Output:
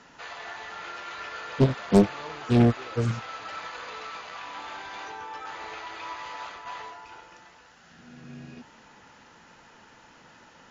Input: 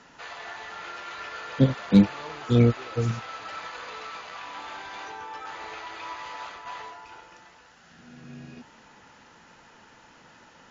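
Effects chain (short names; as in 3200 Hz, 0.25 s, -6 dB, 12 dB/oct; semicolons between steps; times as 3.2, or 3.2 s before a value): Doppler distortion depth 0.92 ms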